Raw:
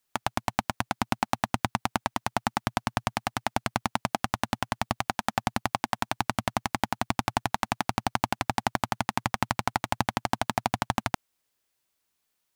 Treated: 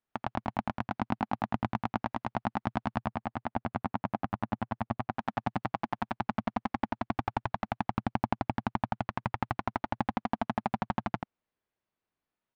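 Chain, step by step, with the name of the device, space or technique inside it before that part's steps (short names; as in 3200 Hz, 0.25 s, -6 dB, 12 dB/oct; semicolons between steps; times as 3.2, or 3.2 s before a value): 2.99–5.12 high shelf 3000 Hz -9.5 dB; phone in a pocket (LPF 3500 Hz 12 dB/oct; bell 210 Hz +3 dB 0.83 oct; high shelf 2300 Hz -12 dB); echo 86 ms -5 dB; gain -4 dB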